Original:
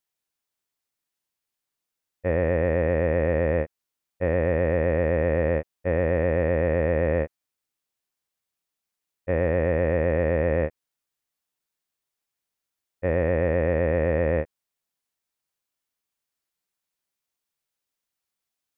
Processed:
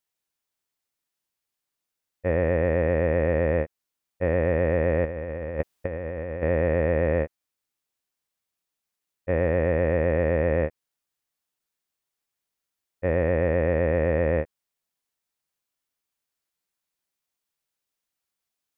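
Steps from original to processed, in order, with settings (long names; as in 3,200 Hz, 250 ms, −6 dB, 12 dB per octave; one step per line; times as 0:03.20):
0:05.05–0:06.43: compressor whose output falls as the input rises −28 dBFS, ratio −0.5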